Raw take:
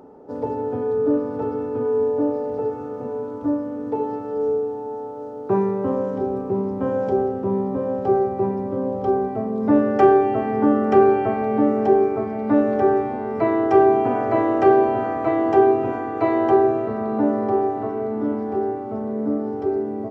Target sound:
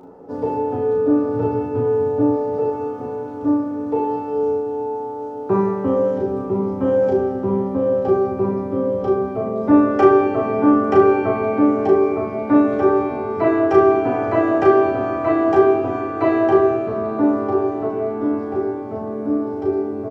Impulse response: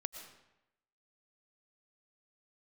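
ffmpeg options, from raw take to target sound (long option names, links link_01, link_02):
-filter_complex "[0:a]asettb=1/sr,asplit=3[link_01][link_02][link_03];[link_01]atrim=end=1.324[link_04];[link_02]atrim=start=1.32:end=2.32,asetpts=PTS-STARTPTS,afade=type=in:duration=0.004:curve=qsin,afade=type=out:start_time=0.996:duration=0.004:curve=qsin,equalizer=frequency=120:width_type=o:width=0.46:gain=13[link_05];[link_03]atrim=start=2.316[link_06];[link_04][link_05]acrossfade=duration=0.004:curve1=hsin:curve2=qsin[link_07];[link_07][link_06]acrossfade=duration=0.004:curve1=qsin:curve2=hsin,aecho=1:1:11|34:0.531|0.596,asplit=2[link_08][link_09];[1:a]atrim=start_sample=2205,adelay=40[link_10];[link_09][link_10]afir=irnorm=-1:irlink=0,volume=-4.5dB[link_11];[link_08][link_11]amix=inputs=2:normalize=0,volume=1dB"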